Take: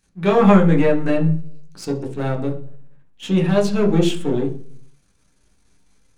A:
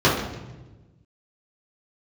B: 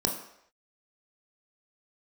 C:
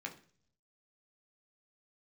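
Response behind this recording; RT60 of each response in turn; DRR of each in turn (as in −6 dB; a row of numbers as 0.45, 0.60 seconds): C; 1.2 s, non-exponential decay, 0.50 s; −8.5, 1.5, 0.5 decibels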